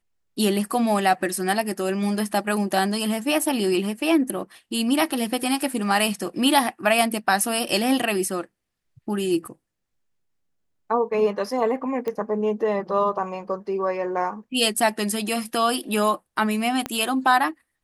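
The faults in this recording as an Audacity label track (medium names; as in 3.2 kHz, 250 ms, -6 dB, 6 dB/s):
12.080000	12.080000	pop -16 dBFS
16.860000	16.860000	pop -12 dBFS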